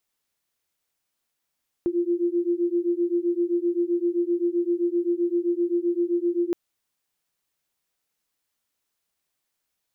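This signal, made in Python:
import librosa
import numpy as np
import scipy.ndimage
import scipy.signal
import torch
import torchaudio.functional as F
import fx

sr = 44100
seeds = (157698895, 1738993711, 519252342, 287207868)

y = fx.two_tone_beats(sr, length_s=4.67, hz=343.0, beat_hz=7.7, level_db=-24.0)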